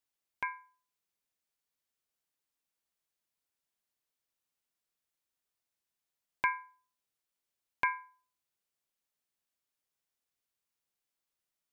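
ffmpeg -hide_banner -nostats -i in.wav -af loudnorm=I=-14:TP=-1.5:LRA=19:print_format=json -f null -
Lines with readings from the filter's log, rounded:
"input_i" : "-36.0",
"input_tp" : "-15.6",
"input_lra" : "8.7",
"input_thresh" : "-47.0",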